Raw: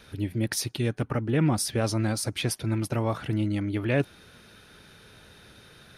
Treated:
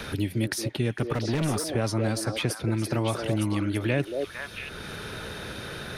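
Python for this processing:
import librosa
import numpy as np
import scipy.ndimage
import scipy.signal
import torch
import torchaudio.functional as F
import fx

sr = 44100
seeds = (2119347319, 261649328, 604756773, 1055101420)

y = fx.clip_hard(x, sr, threshold_db=-24.0, at=(1.13, 1.69))
y = fx.echo_stepped(y, sr, ms=227, hz=480.0, octaves=1.4, feedback_pct=70, wet_db=-2)
y = fx.band_squash(y, sr, depth_pct=70)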